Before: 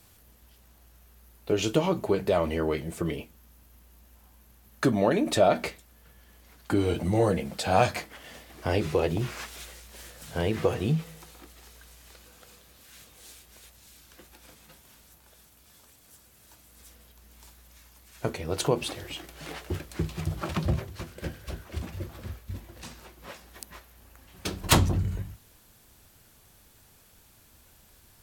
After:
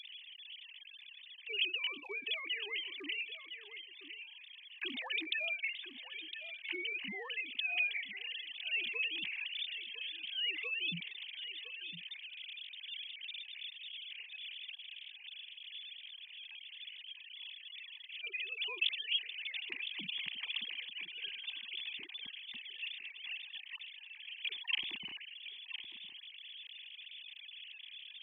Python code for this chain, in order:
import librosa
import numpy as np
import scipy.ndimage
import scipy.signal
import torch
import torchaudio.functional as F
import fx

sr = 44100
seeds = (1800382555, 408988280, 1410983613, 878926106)

y = fx.sine_speech(x, sr)
y = scipy.signal.sosfilt(scipy.signal.cheby2(4, 40, 1500.0, 'highpass', fs=sr, output='sos'), y)
y = y + 10.0 ** (-19.5 / 20.0) * np.pad(y, (int(1009 * sr / 1000.0), 0))[:len(y)]
y = fx.env_flatten(y, sr, amount_pct=50)
y = F.gain(torch.from_numpy(y), 10.5).numpy()